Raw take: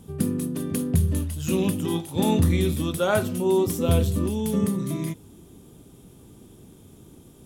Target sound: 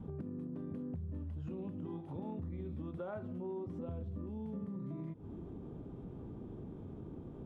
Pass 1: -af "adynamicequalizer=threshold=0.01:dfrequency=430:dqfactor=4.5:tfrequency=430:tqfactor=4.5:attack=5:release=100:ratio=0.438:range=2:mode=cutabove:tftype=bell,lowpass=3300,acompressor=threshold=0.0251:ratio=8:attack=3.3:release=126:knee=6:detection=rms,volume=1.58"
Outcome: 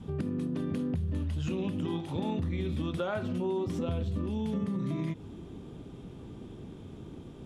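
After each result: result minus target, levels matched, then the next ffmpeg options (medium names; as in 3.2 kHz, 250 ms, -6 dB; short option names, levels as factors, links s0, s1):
4 kHz band +14.5 dB; compression: peak gain reduction -10 dB
-af "adynamicequalizer=threshold=0.01:dfrequency=430:dqfactor=4.5:tfrequency=430:tqfactor=4.5:attack=5:release=100:ratio=0.438:range=2:mode=cutabove:tftype=bell,lowpass=1100,acompressor=threshold=0.0251:ratio=8:attack=3.3:release=126:knee=6:detection=rms,volume=1.58"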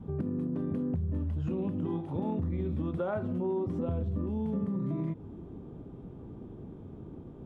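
compression: peak gain reduction -10 dB
-af "adynamicequalizer=threshold=0.01:dfrequency=430:dqfactor=4.5:tfrequency=430:tqfactor=4.5:attack=5:release=100:ratio=0.438:range=2:mode=cutabove:tftype=bell,lowpass=1100,acompressor=threshold=0.00668:ratio=8:attack=3.3:release=126:knee=6:detection=rms,volume=1.58"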